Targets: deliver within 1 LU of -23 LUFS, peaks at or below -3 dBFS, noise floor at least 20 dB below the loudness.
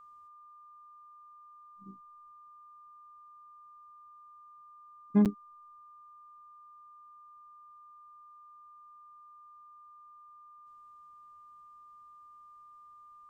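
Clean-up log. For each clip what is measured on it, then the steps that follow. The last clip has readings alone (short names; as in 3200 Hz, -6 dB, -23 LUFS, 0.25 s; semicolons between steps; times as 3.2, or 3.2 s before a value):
dropouts 1; longest dropout 7.6 ms; steady tone 1200 Hz; tone level -52 dBFS; loudness -31.0 LUFS; peak -15.0 dBFS; loudness target -23.0 LUFS
-> interpolate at 5.25, 7.6 ms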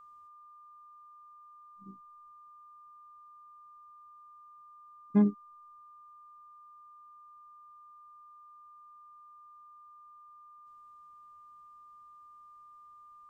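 dropouts 0; steady tone 1200 Hz; tone level -52 dBFS
-> notch 1200 Hz, Q 30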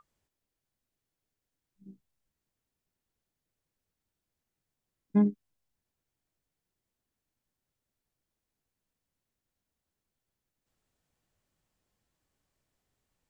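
steady tone none; loudness -28.5 LUFS; peak -15.0 dBFS; loudness target -23.0 LUFS
-> gain +5.5 dB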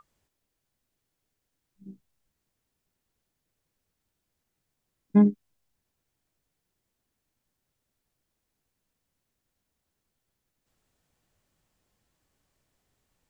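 loudness -23.0 LUFS; peak -9.5 dBFS; noise floor -82 dBFS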